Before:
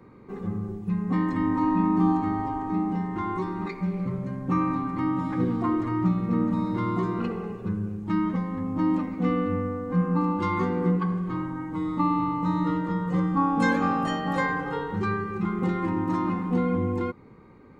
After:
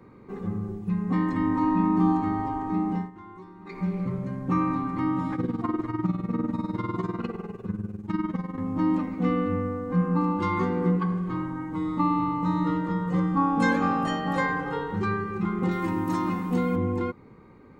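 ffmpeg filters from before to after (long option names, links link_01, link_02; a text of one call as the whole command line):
ffmpeg -i in.wav -filter_complex "[0:a]asettb=1/sr,asplit=3[link_01][link_02][link_03];[link_01]atrim=end=5.354[link_04];[link_02]atrim=start=5.35:end=8.58,asetpts=PTS-STARTPTS,afade=type=in:duration=0.004:curve=qsin,afade=type=out:start_time=3.226:duration=0.004:curve=qsin,tremolo=f=20:d=0.76[link_05];[link_03]atrim=start=8.576[link_06];[link_04][link_05]acrossfade=duration=0.004:curve1=hsin:curve2=qsin[link_07];[link_07][link_06]acrossfade=duration=0.004:curve1=qsin:curve2=hsin,asettb=1/sr,asplit=3[link_08][link_09][link_10];[link_08]atrim=end=15.714[link_11];[link_09]atrim=start=15.71:end=16.76,asetpts=PTS-STARTPTS,afade=type=in:duration=0.004:curve=qsin,afade=type=out:start_time=1.046:duration=0.004:curve=qsin,aemphasis=mode=production:type=75fm[link_12];[link_10]atrim=start=16.756[link_13];[link_11][link_12]acrossfade=duration=0.004:curve1=hsin:curve2=qsin[link_14];[link_14][link_13]acrossfade=duration=0.004:curve1=qsin:curve2=hsin,asplit=3[link_15][link_16][link_17];[link_15]atrim=end=3.11,asetpts=PTS-STARTPTS,afade=type=out:start_time=2.98:duration=0.13:silence=0.16788[link_18];[link_16]atrim=start=3.11:end=3.65,asetpts=PTS-STARTPTS,volume=-15.5dB[link_19];[link_17]atrim=start=3.65,asetpts=PTS-STARTPTS,afade=type=in:duration=0.13:silence=0.16788[link_20];[link_18][link_19][link_20]concat=n=3:v=0:a=1" out.wav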